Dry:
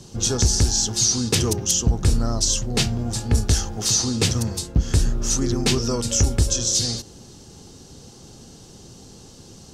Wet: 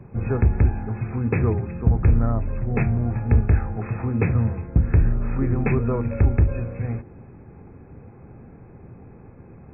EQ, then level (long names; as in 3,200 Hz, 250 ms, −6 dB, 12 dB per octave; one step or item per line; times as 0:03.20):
linear-phase brick-wall low-pass 2,600 Hz
parametric band 100 Hz +5 dB 1.3 octaves
mains-hum notches 50/100/150/200/250/300/350 Hz
0.0 dB